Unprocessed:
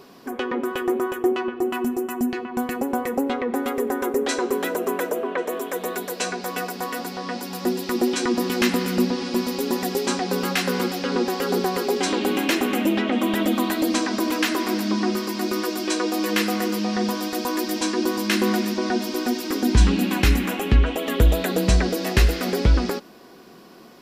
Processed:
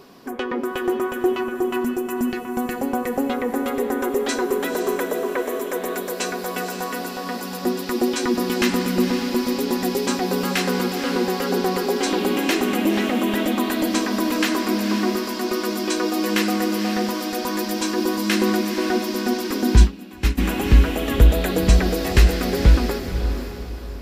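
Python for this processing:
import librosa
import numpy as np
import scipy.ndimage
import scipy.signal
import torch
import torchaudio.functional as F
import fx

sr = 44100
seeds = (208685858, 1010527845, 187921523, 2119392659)

y = fx.low_shelf(x, sr, hz=78.0, db=6.5)
y = fx.echo_diffused(y, sr, ms=510, feedback_pct=41, wet_db=-8.0)
y = fx.upward_expand(y, sr, threshold_db=-19.0, expansion=2.5, at=(19.81, 20.37), fade=0.02)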